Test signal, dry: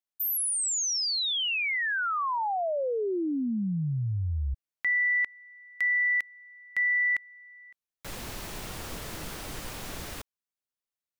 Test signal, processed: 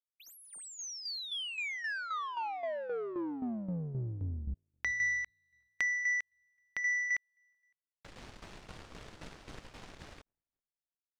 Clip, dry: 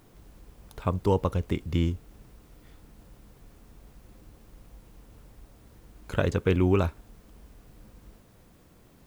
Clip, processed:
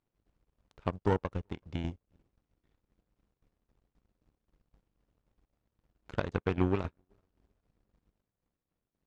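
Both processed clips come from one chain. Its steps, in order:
in parallel at +2 dB: downward compressor, threshold −40 dBFS
on the sum: feedback echo with a low-pass in the loop 380 ms, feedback 47%, low-pass 1,500 Hz, level −23 dB
power curve on the samples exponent 2
shaped tremolo saw down 3.8 Hz, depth 65%
high-frequency loss of the air 99 metres
level +1.5 dB

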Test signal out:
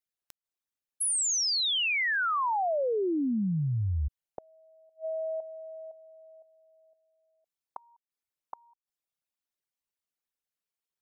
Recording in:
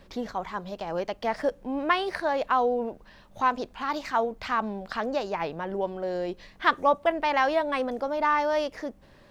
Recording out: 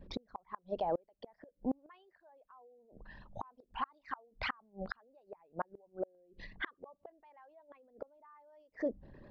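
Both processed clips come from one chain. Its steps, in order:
spectral envelope exaggerated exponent 2
gate with flip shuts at −24 dBFS, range −36 dB

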